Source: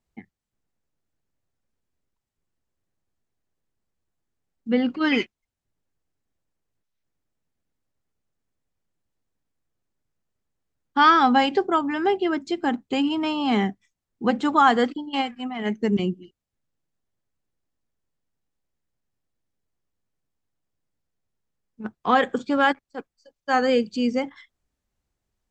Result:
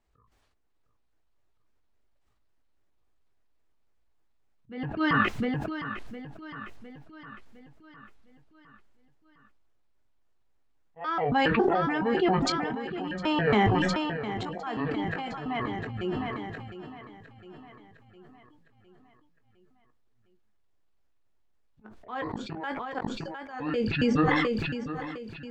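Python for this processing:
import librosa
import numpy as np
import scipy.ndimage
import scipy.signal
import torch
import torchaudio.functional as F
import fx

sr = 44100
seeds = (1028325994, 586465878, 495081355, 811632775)

p1 = fx.pitch_trill(x, sr, semitones=-9.5, every_ms=138)
p2 = fx.lowpass(p1, sr, hz=2400.0, slope=6)
p3 = fx.peak_eq(p2, sr, hz=150.0, db=-11.5, octaves=1.4)
p4 = fx.notch(p3, sr, hz=510.0, q=13.0)
p5 = fx.over_compress(p4, sr, threshold_db=-28.0, ratio=-1.0)
p6 = p4 + (p5 * 10.0 ** (2.5 / 20.0))
p7 = fx.auto_swell(p6, sr, attack_ms=603.0)
p8 = fx.doubler(p7, sr, ms=19.0, db=-11)
p9 = fx.echo_feedback(p8, sr, ms=708, feedback_pct=55, wet_db=-12)
p10 = fx.sustainer(p9, sr, db_per_s=22.0)
y = p10 * 10.0 ** (-3.0 / 20.0)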